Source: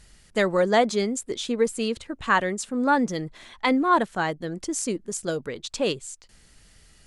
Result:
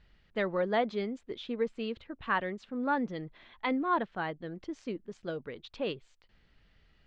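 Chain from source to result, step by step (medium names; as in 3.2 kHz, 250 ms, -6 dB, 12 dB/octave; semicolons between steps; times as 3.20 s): low-pass 3.6 kHz 24 dB/octave; trim -9 dB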